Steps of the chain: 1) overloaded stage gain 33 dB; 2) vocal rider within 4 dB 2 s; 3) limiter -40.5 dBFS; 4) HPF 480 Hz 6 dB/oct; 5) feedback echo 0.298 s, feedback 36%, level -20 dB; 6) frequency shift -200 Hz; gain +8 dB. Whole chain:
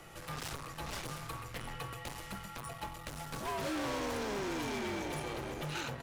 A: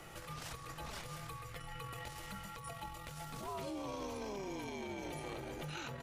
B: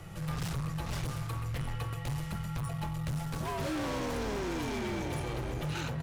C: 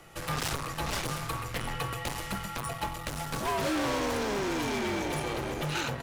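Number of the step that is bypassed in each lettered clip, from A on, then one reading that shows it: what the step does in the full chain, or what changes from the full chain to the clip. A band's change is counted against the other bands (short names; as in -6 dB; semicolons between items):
1, distortion -5 dB; 4, 125 Hz band +11.0 dB; 3, mean gain reduction 7.5 dB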